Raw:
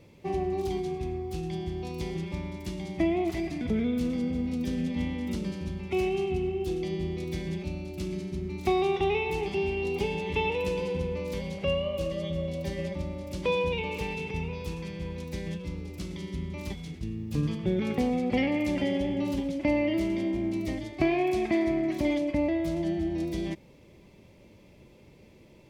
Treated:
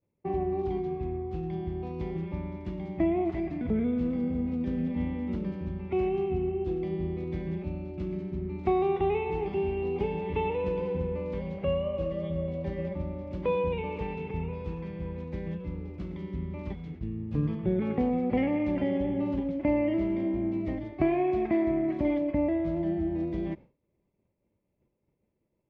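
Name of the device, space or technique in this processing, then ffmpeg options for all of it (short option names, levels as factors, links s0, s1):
hearing-loss simulation: -af "lowpass=1600,agate=range=0.0224:threshold=0.01:ratio=3:detection=peak"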